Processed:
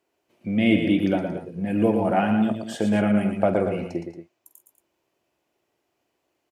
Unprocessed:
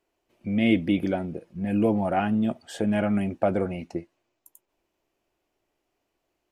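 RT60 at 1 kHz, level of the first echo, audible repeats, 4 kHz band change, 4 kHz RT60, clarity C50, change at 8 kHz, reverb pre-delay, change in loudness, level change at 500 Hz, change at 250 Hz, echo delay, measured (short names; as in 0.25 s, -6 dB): none, -13.0 dB, 4, +3.5 dB, none, none, n/a, none, +3.0 dB, +3.5 dB, +3.0 dB, 47 ms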